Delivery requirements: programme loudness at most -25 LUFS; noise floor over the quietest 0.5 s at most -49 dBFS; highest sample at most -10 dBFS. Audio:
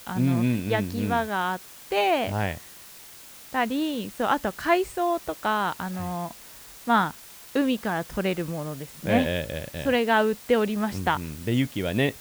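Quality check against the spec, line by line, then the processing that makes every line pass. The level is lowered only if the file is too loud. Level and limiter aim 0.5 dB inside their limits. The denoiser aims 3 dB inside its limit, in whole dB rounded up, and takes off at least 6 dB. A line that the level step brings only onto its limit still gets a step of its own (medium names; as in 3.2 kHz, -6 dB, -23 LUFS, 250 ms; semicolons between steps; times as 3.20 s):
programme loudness -26.0 LUFS: pass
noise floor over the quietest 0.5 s -46 dBFS: fail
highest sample -6.5 dBFS: fail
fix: noise reduction 6 dB, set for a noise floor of -46 dBFS; peak limiter -10.5 dBFS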